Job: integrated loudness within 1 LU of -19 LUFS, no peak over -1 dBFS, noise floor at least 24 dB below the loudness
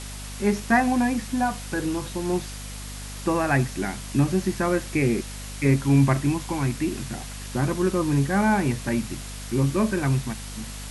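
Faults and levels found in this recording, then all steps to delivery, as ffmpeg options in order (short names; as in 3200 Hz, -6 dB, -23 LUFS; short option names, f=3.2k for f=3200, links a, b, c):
hum 50 Hz; harmonics up to 250 Hz; hum level -35 dBFS; noise floor -36 dBFS; noise floor target -49 dBFS; loudness -24.5 LUFS; peak -8.0 dBFS; loudness target -19.0 LUFS
-> -af "bandreject=f=50:t=h:w=4,bandreject=f=100:t=h:w=4,bandreject=f=150:t=h:w=4,bandreject=f=200:t=h:w=4,bandreject=f=250:t=h:w=4"
-af "afftdn=nr=13:nf=-36"
-af "volume=5.5dB"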